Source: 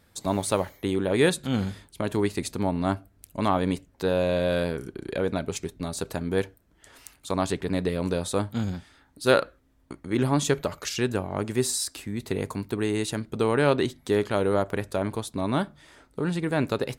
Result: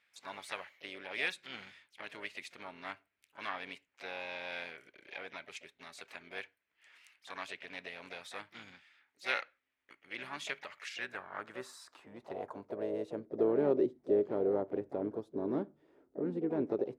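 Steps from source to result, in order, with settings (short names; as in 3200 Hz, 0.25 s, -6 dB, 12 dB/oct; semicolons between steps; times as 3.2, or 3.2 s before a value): harmoniser +5 st -12 dB, +7 st -10 dB; band-pass sweep 2300 Hz -> 370 Hz, 10.74–13.51; gain -3 dB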